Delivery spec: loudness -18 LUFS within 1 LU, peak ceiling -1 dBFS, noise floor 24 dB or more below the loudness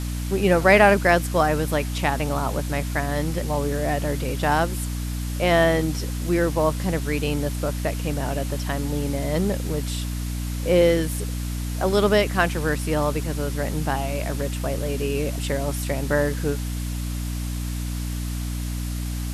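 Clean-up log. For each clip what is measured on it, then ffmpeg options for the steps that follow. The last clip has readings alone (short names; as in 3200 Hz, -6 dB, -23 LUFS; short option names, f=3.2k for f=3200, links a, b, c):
hum 60 Hz; harmonics up to 300 Hz; hum level -25 dBFS; noise floor -28 dBFS; noise floor target -48 dBFS; loudness -23.5 LUFS; peak -2.5 dBFS; loudness target -18.0 LUFS
-> -af "bandreject=f=60:t=h:w=6,bandreject=f=120:t=h:w=6,bandreject=f=180:t=h:w=6,bandreject=f=240:t=h:w=6,bandreject=f=300:t=h:w=6"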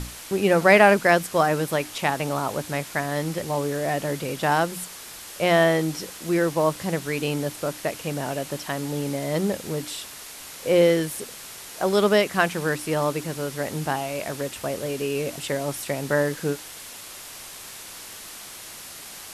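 hum none; noise floor -41 dBFS; noise floor target -48 dBFS
-> -af "afftdn=nr=7:nf=-41"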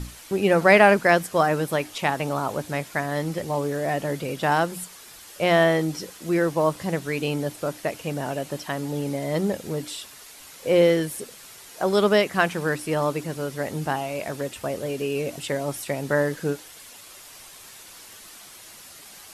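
noise floor -45 dBFS; noise floor target -48 dBFS
-> -af "afftdn=nr=6:nf=-45"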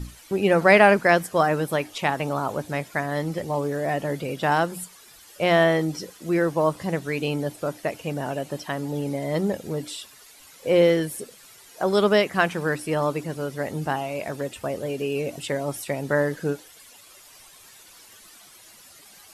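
noise floor -50 dBFS; loudness -24.0 LUFS; peak -3.0 dBFS; loudness target -18.0 LUFS
-> -af "volume=6dB,alimiter=limit=-1dB:level=0:latency=1"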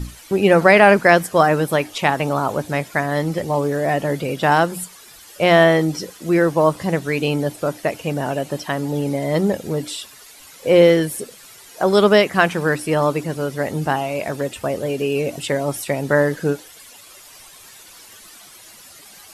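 loudness -18.5 LUFS; peak -1.0 dBFS; noise floor -44 dBFS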